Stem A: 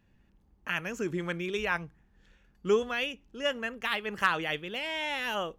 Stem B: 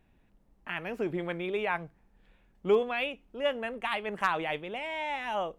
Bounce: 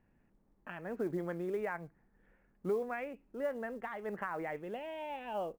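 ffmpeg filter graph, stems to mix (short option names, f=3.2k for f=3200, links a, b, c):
-filter_complex "[0:a]highpass=130,acompressor=threshold=-33dB:ratio=6,volume=-5.5dB[a];[1:a]alimiter=limit=-22dB:level=0:latency=1:release=94,adelay=0.4,volume=-7.5dB[b];[a][b]amix=inputs=2:normalize=0,lowpass=f=2.2k:w=0.5412,lowpass=f=2.2k:w=1.3066,acrusher=bits=8:mode=log:mix=0:aa=0.000001"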